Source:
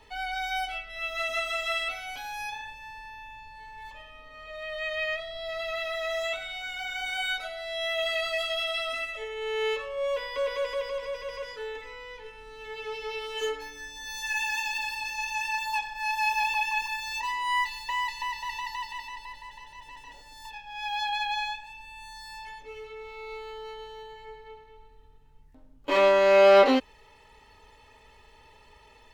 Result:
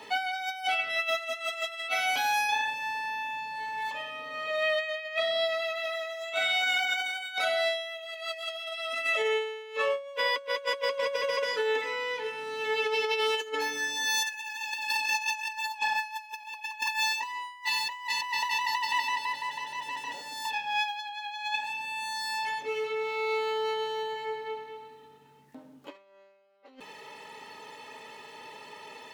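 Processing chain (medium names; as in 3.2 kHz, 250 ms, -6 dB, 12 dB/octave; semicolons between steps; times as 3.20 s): high-pass 170 Hz 24 dB/octave; compressor with a negative ratio -36 dBFS, ratio -0.5; trim +4.5 dB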